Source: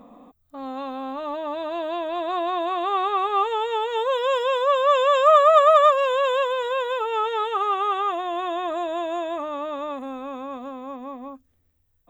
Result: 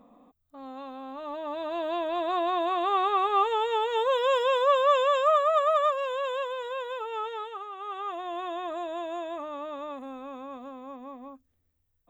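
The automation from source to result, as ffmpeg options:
-af "volume=2.82,afade=t=in:st=1.08:d=0.88:silence=0.446684,afade=t=out:st=4.7:d=0.72:silence=0.446684,afade=t=out:st=7.25:d=0.46:silence=0.354813,afade=t=in:st=7.71:d=0.59:silence=0.281838"

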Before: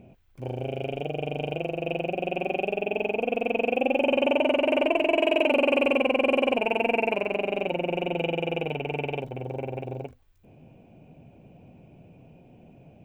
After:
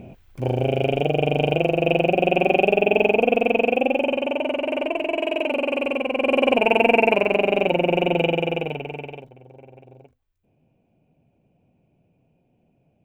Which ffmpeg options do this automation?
-af "volume=9.44,afade=t=out:st=3.01:d=1.22:silence=0.266073,afade=t=in:st=6.1:d=0.61:silence=0.334965,afade=t=out:st=8.14:d=0.77:silence=0.316228,afade=t=out:st=8.91:d=0.45:silence=0.281838"

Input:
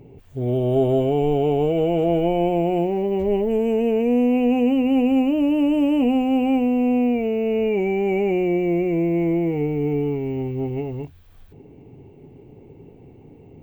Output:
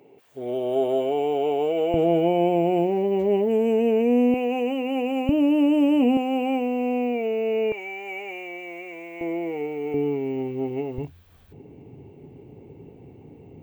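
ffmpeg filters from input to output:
-af "asetnsamples=n=441:p=0,asendcmd='1.94 highpass f 180;4.34 highpass f 440;5.29 highpass f 150;6.17 highpass f 360;7.72 highpass f 1100;9.21 highpass f 490;9.94 highpass f 220;10.98 highpass f 57',highpass=440"

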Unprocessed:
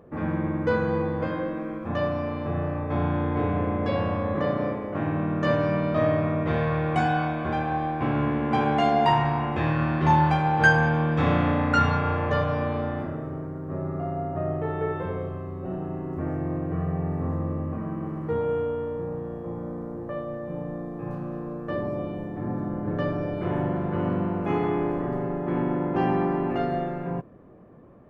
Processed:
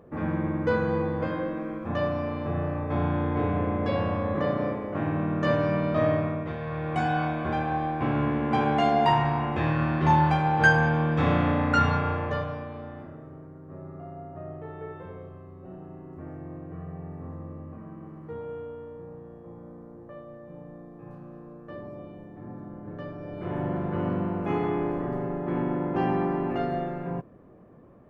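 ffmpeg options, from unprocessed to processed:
-af "volume=7.5,afade=t=out:st=6.13:d=0.44:silence=0.334965,afade=t=in:st=6.57:d=0.67:silence=0.334965,afade=t=out:st=11.96:d=0.7:silence=0.316228,afade=t=in:st=23.19:d=0.56:silence=0.354813"

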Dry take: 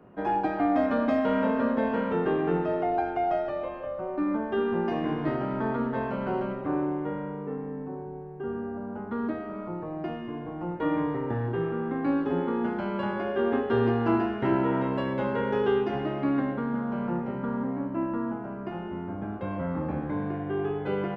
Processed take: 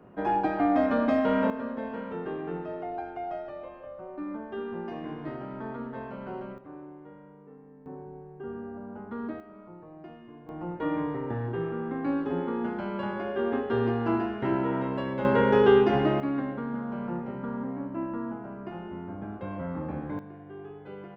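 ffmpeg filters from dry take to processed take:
-af "asetnsamples=n=441:p=0,asendcmd='1.5 volume volume -8.5dB;6.58 volume volume -16.5dB;7.86 volume volume -5dB;9.4 volume volume -12.5dB;10.49 volume volume -2.5dB;15.25 volume volume 6dB;16.2 volume volume -3.5dB;20.19 volume volume -13.5dB',volume=1.06"

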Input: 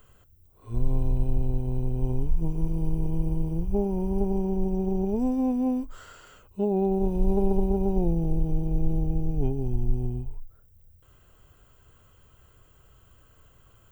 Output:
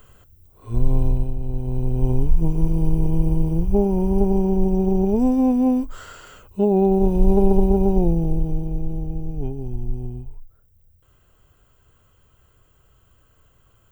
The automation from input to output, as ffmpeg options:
-af "volume=6.68,afade=t=out:st=1.06:d=0.3:silence=0.354813,afade=t=in:st=1.36:d=0.73:silence=0.316228,afade=t=out:st=7.81:d=1.05:silence=0.375837"

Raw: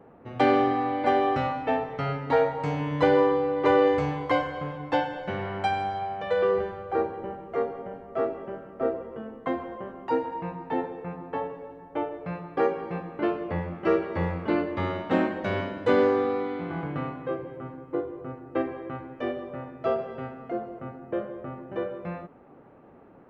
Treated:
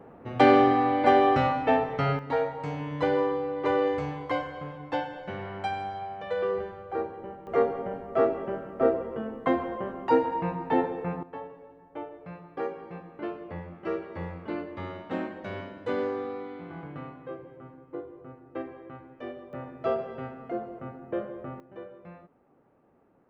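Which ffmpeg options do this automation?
-af "asetnsamples=n=441:p=0,asendcmd='2.19 volume volume -5dB;7.47 volume volume 4dB;11.23 volume volume -8.5dB;19.53 volume volume -1.5dB;21.6 volume volume -12dB',volume=1.41"

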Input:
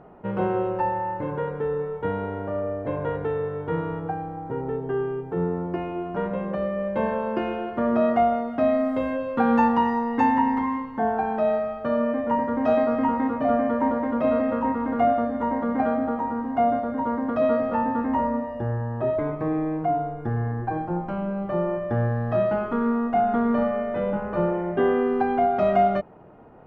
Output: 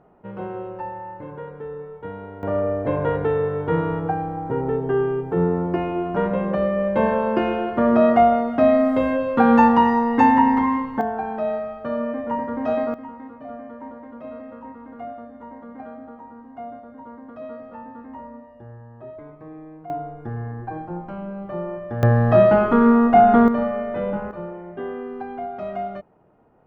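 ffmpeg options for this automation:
-af "asetnsamples=n=441:p=0,asendcmd='2.43 volume volume 5.5dB;11.01 volume volume -2dB;12.94 volume volume -14.5dB;19.9 volume volume -4dB;22.03 volume volume 9dB;23.48 volume volume 0.5dB;24.31 volume volume -9.5dB',volume=0.447"

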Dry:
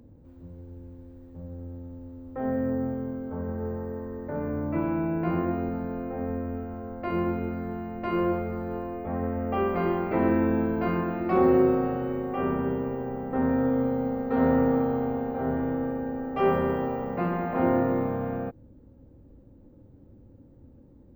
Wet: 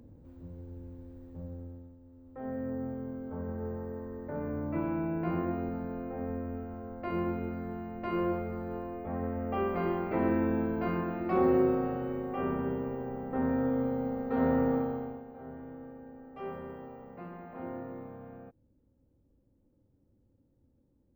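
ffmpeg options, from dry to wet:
-af "volume=2.37,afade=t=out:st=1.42:d=0.55:silence=0.237137,afade=t=in:st=1.97:d=1.38:silence=0.354813,afade=t=out:st=14.74:d=0.5:silence=0.251189"

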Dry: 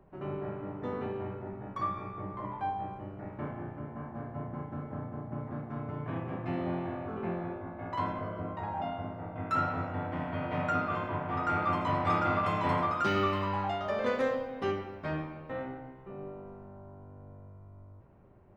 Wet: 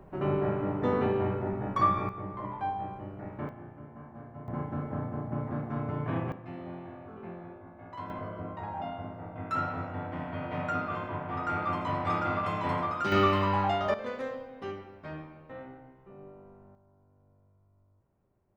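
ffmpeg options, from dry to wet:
-af "asetnsamples=n=441:p=0,asendcmd='2.09 volume volume 1dB;3.49 volume volume -6dB;4.48 volume volume 4.5dB;6.32 volume volume -8dB;8.1 volume volume -1.5dB;13.12 volume volume 5dB;13.94 volume volume -6.5dB;16.75 volume volume -15dB',volume=2.66"

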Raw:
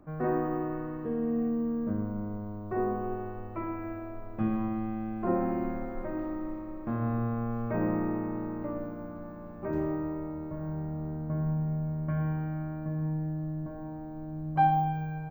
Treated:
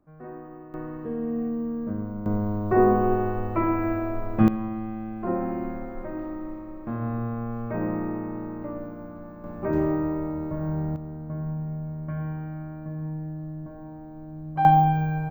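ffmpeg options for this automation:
-af "asetnsamples=n=441:p=0,asendcmd='0.74 volume volume 1dB;2.26 volume volume 11.5dB;4.48 volume volume 1dB;9.44 volume volume 7dB;10.96 volume volume -1dB;14.65 volume volume 9dB',volume=0.266"

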